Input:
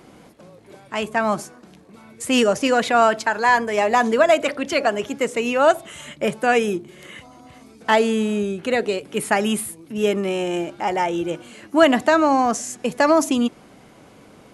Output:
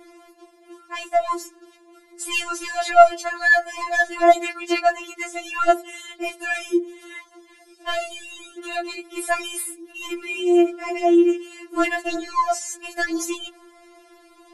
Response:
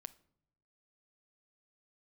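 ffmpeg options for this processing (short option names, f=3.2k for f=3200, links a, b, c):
-af "acontrast=49,afftfilt=real='re*4*eq(mod(b,16),0)':imag='im*4*eq(mod(b,16),0)':win_size=2048:overlap=0.75,volume=-4.5dB"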